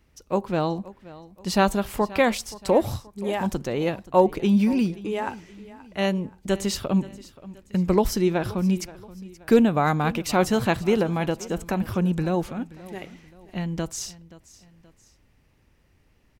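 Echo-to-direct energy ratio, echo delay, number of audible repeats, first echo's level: -18.5 dB, 527 ms, 2, -19.0 dB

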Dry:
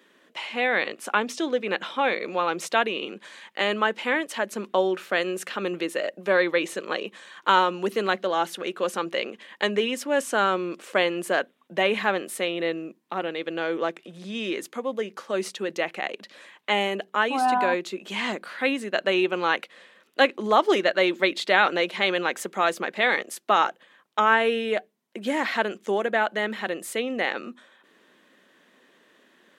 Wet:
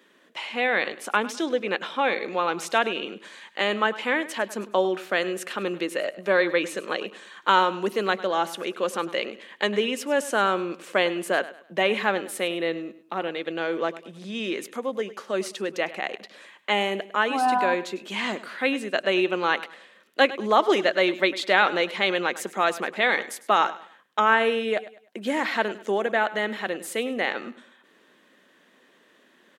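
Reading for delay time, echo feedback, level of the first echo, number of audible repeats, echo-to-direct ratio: 102 ms, 33%, -16.5 dB, 2, -16.0 dB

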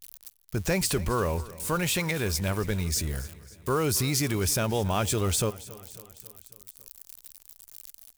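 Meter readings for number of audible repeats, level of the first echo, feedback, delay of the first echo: 4, -19.0 dB, 57%, 274 ms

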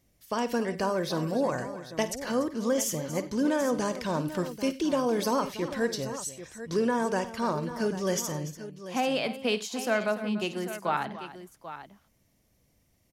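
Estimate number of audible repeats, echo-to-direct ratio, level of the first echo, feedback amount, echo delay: 4, -8.5 dB, -14.0 dB, no regular repeats, 52 ms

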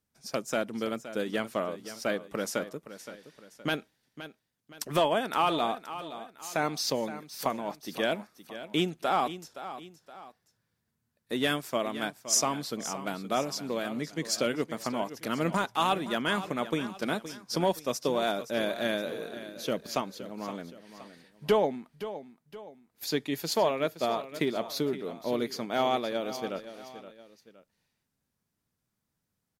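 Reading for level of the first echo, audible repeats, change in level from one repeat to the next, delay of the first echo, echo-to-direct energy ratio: -13.0 dB, 2, -7.5 dB, 519 ms, -12.5 dB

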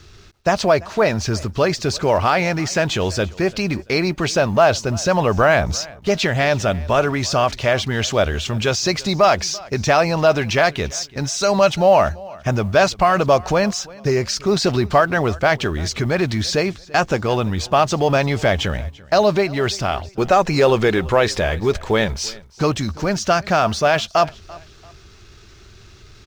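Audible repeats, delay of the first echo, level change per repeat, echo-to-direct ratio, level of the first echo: 2, 339 ms, -9.5 dB, -21.5 dB, -22.0 dB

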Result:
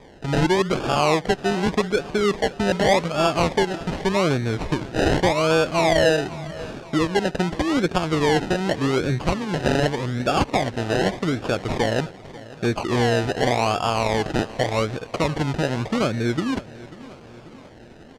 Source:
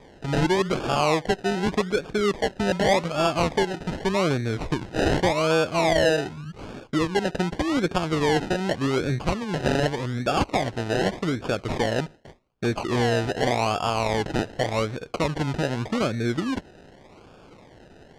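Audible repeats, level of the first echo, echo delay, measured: 4, -18.5 dB, 540 ms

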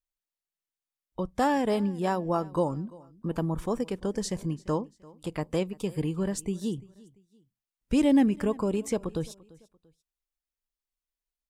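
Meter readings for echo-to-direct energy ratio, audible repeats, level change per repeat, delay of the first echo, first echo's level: -22.0 dB, 2, -9.0 dB, 342 ms, -22.5 dB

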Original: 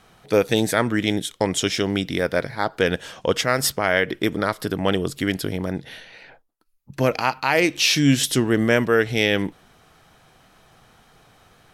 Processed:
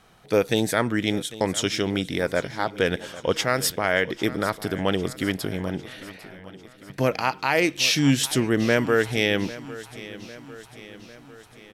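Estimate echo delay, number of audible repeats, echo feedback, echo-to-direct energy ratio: 800 ms, 4, 56%, -15.5 dB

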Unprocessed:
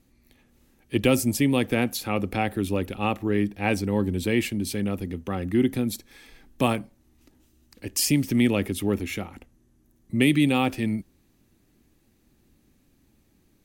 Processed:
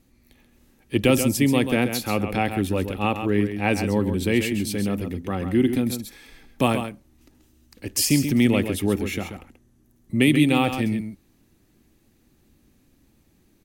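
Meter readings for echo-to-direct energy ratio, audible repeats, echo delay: -8.5 dB, 1, 134 ms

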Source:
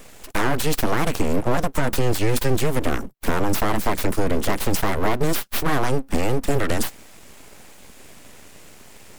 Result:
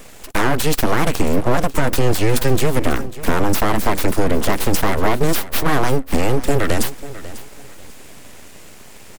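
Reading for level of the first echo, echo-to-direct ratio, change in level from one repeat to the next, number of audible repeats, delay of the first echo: -16.0 dB, -15.5 dB, -11.5 dB, 2, 544 ms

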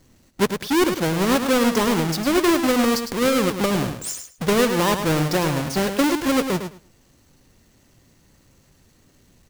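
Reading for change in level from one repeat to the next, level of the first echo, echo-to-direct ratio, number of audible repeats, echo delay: -15.5 dB, -8.0 dB, -8.0 dB, 2, 105 ms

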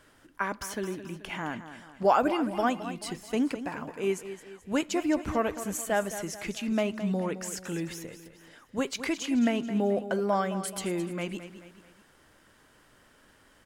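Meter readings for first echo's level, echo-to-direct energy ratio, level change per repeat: -12.0 dB, -11.0 dB, -7.0 dB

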